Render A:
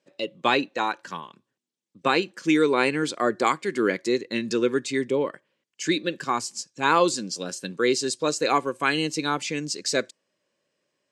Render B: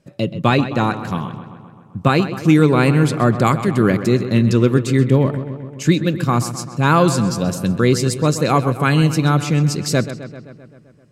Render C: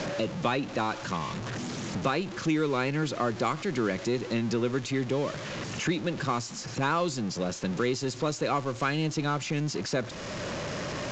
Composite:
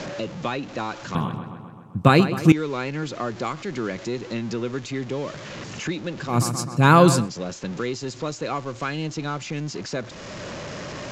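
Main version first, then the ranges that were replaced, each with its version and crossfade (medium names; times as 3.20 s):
C
1.15–2.52 s: from B
6.34–7.22 s: from B, crossfade 0.16 s
not used: A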